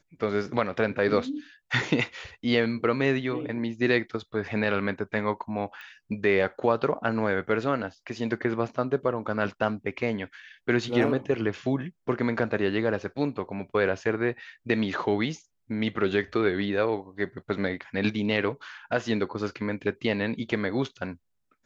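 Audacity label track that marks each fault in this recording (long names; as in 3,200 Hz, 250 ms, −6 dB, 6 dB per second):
5.810000	5.810000	click −30 dBFS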